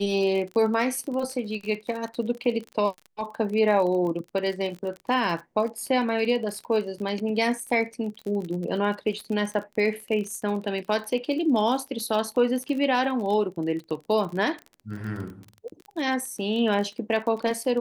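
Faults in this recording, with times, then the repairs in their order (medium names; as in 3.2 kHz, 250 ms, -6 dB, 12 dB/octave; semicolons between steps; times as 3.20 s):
crackle 38 per s -32 dBFS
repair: de-click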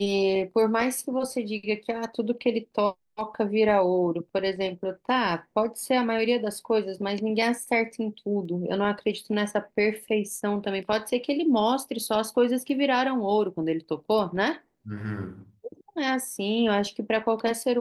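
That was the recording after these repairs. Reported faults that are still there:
nothing left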